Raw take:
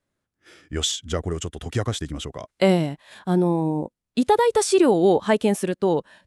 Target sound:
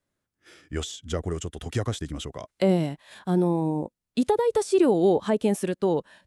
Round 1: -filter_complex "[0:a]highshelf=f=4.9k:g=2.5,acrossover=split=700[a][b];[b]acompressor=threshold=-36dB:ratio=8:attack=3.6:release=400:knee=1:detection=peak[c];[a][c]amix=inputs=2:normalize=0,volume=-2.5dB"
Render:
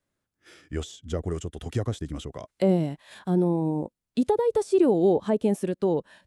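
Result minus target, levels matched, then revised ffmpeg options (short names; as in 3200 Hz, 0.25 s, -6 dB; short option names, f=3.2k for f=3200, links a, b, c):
compressor: peak gain reduction +6.5 dB
-filter_complex "[0:a]highshelf=f=4.9k:g=2.5,acrossover=split=700[a][b];[b]acompressor=threshold=-28.5dB:ratio=8:attack=3.6:release=400:knee=1:detection=peak[c];[a][c]amix=inputs=2:normalize=0,volume=-2.5dB"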